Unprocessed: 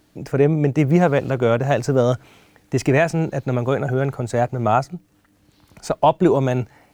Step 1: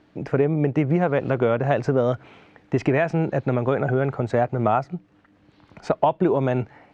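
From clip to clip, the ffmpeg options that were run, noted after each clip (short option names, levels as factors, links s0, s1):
-af "lowpass=2700,acompressor=threshold=0.126:ratio=6,lowshelf=f=74:g=-11.5,volume=1.41"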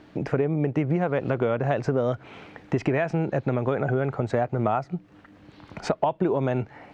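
-af "acompressor=threshold=0.0178:ratio=2,volume=2.11"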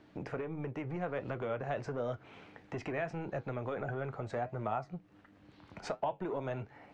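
-filter_complex "[0:a]acrossover=split=520[s0][s1];[s0]asoftclip=type=tanh:threshold=0.0447[s2];[s2][s1]amix=inputs=2:normalize=0,flanger=delay=8.4:depth=3.3:regen=-69:speed=1.5:shape=triangular,volume=0.531"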